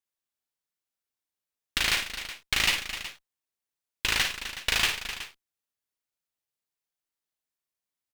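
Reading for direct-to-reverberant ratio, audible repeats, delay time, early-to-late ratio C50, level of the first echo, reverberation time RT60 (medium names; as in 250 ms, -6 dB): no reverb, 3, 54 ms, no reverb, -7.0 dB, no reverb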